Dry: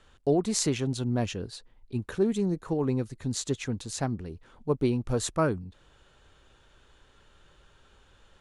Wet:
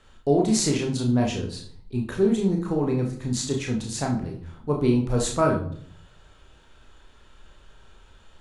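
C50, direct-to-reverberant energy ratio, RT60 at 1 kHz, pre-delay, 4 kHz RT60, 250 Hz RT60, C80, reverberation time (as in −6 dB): 7.5 dB, 0.5 dB, 0.55 s, 28 ms, 0.40 s, 0.75 s, 12.0 dB, 0.60 s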